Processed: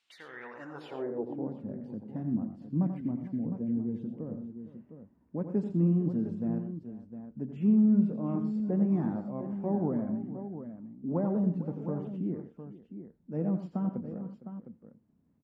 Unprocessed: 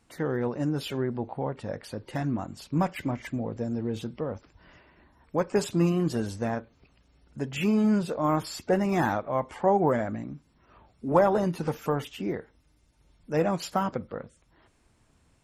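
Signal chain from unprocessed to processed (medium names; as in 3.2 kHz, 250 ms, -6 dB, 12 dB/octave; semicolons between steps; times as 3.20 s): multi-tap echo 87/120/458/708 ms -9/-13/-16.5/-10.5 dB; band-pass sweep 3.3 kHz -> 210 Hz, 0.22–1.56 s; trim +1.5 dB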